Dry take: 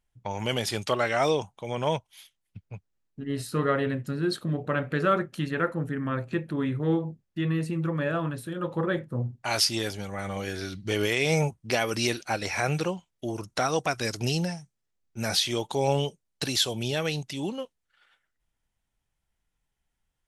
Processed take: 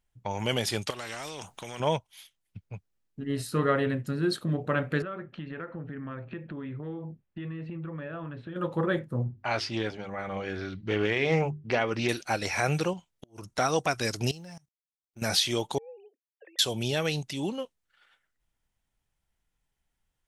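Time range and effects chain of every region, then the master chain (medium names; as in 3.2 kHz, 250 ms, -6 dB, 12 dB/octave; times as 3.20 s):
0.90–1.80 s: compression 5:1, threshold -32 dBFS + spectrum-flattening compressor 2:1
5.02–8.56 s: low-pass 3.2 kHz 24 dB/octave + compression 5:1, threshold -35 dBFS
9.24–12.09 s: low-pass 2.7 kHz + hum notches 50/100/150/200/250/300/350/400 Hz + loudspeaker Doppler distortion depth 0.17 ms
12.93–13.58 s: compression 16:1, threshold -35 dBFS + inverted gate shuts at -29 dBFS, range -27 dB
14.31–15.22 s: companding laws mixed up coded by A + level held to a coarse grid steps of 22 dB
15.78–16.59 s: formants replaced by sine waves + compression 10:1, threshold -37 dBFS + cascade formant filter e
whole clip: none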